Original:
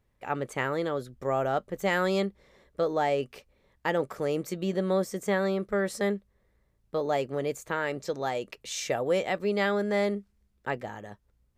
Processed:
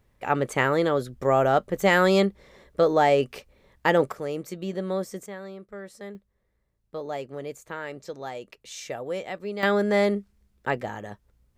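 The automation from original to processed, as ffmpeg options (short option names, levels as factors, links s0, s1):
-af "asetnsamples=n=441:p=0,asendcmd='4.12 volume volume -2dB;5.26 volume volume -12dB;6.15 volume volume -5dB;9.63 volume volume 5dB',volume=2.24"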